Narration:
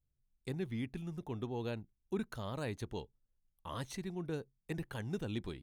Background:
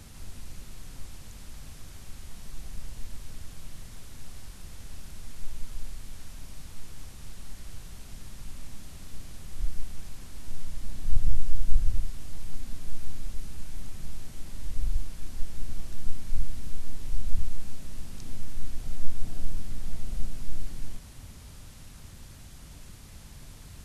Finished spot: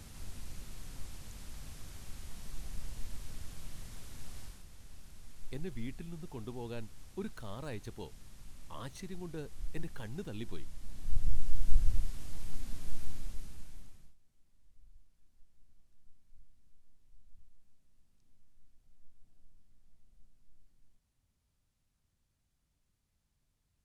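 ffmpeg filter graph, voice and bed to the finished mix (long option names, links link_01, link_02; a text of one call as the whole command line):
ffmpeg -i stem1.wav -i stem2.wav -filter_complex "[0:a]adelay=5050,volume=-3.5dB[link_01];[1:a]volume=4dB,afade=type=out:start_time=4.42:duration=0.23:silence=0.421697,afade=type=in:start_time=10.79:duration=1:silence=0.446684,afade=type=out:start_time=13:duration=1.15:silence=0.0354813[link_02];[link_01][link_02]amix=inputs=2:normalize=0" out.wav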